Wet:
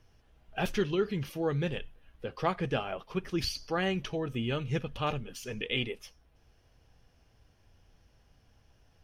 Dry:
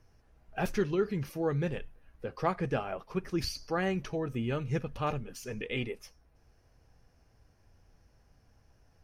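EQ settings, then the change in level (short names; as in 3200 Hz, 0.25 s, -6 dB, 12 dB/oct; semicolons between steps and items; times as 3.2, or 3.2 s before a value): bell 3200 Hz +10.5 dB 0.57 oct; 0.0 dB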